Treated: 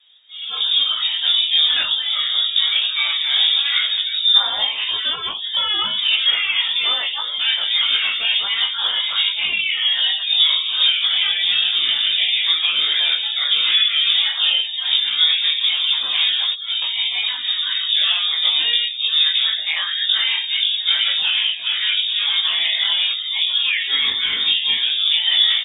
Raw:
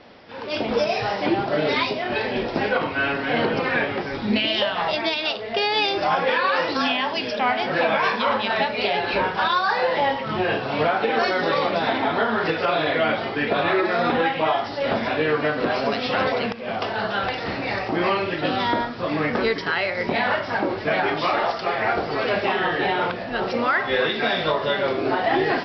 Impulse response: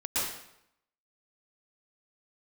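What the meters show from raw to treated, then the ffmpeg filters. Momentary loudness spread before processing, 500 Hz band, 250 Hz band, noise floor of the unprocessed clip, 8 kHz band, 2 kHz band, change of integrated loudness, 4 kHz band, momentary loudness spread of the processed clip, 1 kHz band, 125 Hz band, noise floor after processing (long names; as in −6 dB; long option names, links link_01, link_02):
4 LU, below −20 dB, below −25 dB, −31 dBFS, can't be measured, 0.0 dB, +6.5 dB, +16.0 dB, 5 LU, −13.0 dB, below −20 dB, −27 dBFS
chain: -filter_complex "[0:a]flanger=delay=5.7:depth=8:regen=-42:speed=0.96:shape=sinusoidal,asplit=2[link_01][link_02];[link_02]adelay=19,volume=-3dB[link_03];[link_01][link_03]amix=inputs=2:normalize=0,afftdn=noise_reduction=14:noise_floor=-37,aemphasis=mode=reproduction:type=riaa,lowpass=frequency=3200:width_type=q:width=0.5098,lowpass=frequency=3200:width_type=q:width=0.6013,lowpass=frequency=3200:width_type=q:width=0.9,lowpass=frequency=3200:width_type=q:width=2.563,afreqshift=-3800,volume=3dB"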